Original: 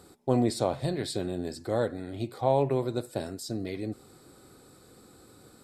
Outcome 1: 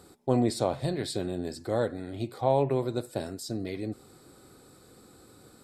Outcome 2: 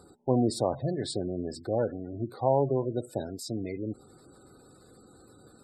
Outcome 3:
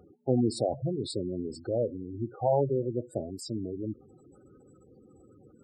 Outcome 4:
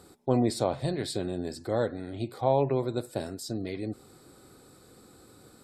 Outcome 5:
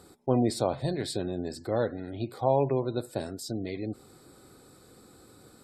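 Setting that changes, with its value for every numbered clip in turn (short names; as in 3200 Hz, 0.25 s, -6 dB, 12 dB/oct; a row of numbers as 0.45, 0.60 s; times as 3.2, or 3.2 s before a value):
spectral gate, under each frame's peak: -60, -20, -10, -45, -35 dB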